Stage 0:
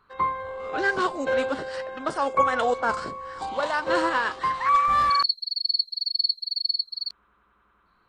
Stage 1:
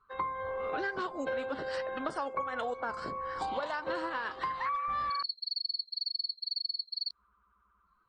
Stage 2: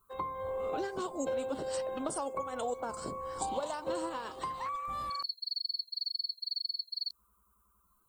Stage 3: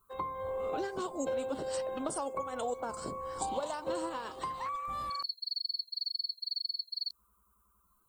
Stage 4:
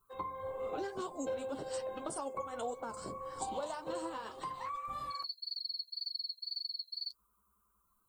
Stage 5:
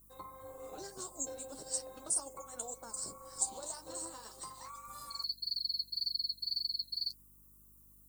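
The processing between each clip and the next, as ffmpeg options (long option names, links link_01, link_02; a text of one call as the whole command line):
ffmpeg -i in.wav -af "acompressor=threshold=-31dB:ratio=12,afftdn=noise_reduction=16:noise_floor=-56" out.wav
ffmpeg -i in.wav -af "equalizer=frequency=1700:width=1.4:gain=-14.5,aexciter=amount=8.6:drive=5.2:freq=6900,volume=2dB" out.wav
ffmpeg -i in.wav -af anull out.wav
ffmpeg -i in.wav -af "flanger=delay=6.3:depth=4.4:regen=-37:speed=1.8:shape=triangular" out.wav
ffmpeg -i in.wav -af "aeval=exprs='val(0)+0.00158*(sin(2*PI*50*n/s)+sin(2*PI*2*50*n/s)/2+sin(2*PI*3*50*n/s)/3+sin(2*PI*4*50*n/s)/4+sin(2*PI*5*50*n/s)/5)':channel_layout=same,tremolo=f=240:d=0.519,aexciter=amount=7.5:drive=8.1:freq=4600,volume=-6.5dB" out.wav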